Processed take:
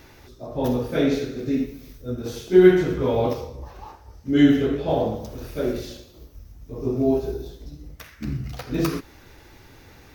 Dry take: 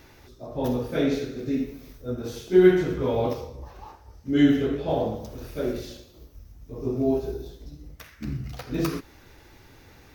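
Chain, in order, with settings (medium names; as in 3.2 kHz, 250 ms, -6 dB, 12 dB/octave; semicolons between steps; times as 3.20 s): 1.66–2.26 s: peaking EQ 860 Hz -6 dB 1.9 oct; trim +3 dB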